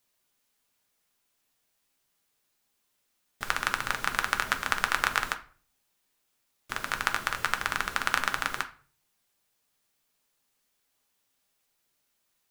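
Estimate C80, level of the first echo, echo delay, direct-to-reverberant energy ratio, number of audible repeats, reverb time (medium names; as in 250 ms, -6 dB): 20.0 dB, no echo, no echo, 6.0 dB, no echo, 0.40 s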